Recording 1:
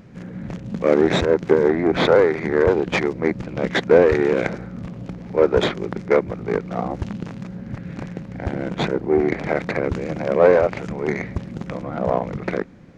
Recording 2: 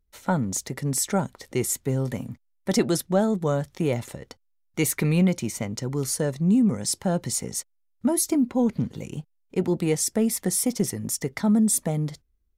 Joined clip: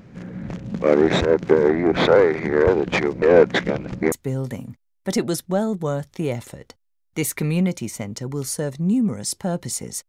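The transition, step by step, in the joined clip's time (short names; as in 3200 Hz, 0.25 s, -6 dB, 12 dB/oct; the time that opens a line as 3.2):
recording 1
3.22–4.12 reverse
4.12 switch to recording 2 from 1.73 s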